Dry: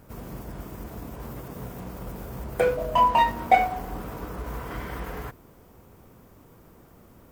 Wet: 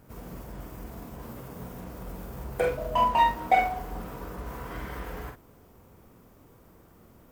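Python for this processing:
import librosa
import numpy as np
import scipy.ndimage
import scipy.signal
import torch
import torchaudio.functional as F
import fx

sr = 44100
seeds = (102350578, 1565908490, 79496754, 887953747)

y = fx.doubler(x, sr, ms=45.0, db=-5.0)
y = y * librosa.db_to_amplitude(-4.0)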